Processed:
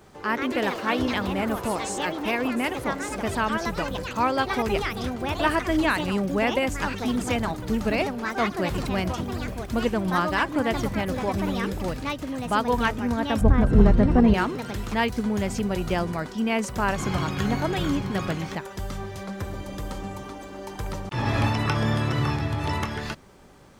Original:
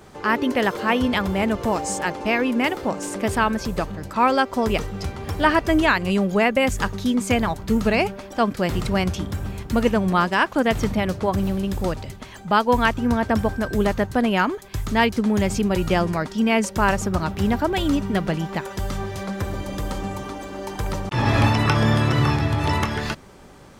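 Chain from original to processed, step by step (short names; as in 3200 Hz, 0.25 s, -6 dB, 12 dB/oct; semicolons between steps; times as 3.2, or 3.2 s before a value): echoes that change speed 0.182 s, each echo +4 st, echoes 3, each echo -6 dB; 13.41–14.34 tilt -4 dB/oct; requantised 12-bit, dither triangular; gain -5.5 dB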